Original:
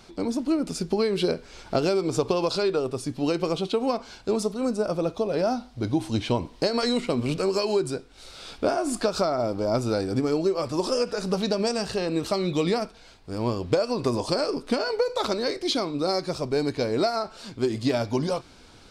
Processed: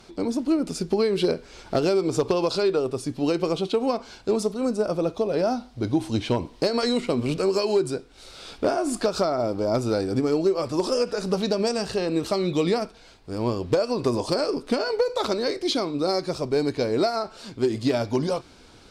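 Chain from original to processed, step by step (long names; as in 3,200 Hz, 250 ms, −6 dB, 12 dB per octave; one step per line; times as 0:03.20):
parametric band 380 Hz +2.5 dB 1 octave
asymmetric clip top −14.5 dBFS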